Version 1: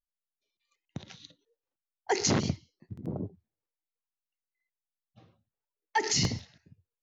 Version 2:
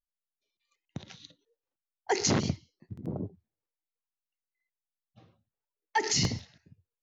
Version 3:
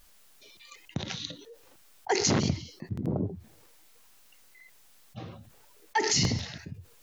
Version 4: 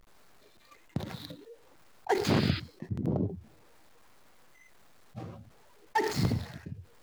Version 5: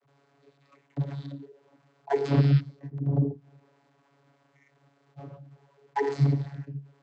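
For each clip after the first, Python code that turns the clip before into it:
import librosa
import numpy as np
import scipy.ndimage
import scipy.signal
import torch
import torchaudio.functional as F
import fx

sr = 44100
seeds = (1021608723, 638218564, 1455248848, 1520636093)

y1 = x
y2 = fx.env_flatten(y1, sr, amount_pct=50)
y3 = scipy.ndimage.median_filter(y2, 15, mode='constant')
y3 = fx.spec_paint(y3, sr, seeds[0], shape='noise', start_s=2.24, length_s=0.36, low_hz=1200.0, high_hz=5100.0, level_db=-38.0)
y4 = fx.vocoder(y3, sr, bands=32, carrier='saw', carrier_hz=140.0)
y4 = F.gain(torch.from_numpy(y4), 6.0).numpy()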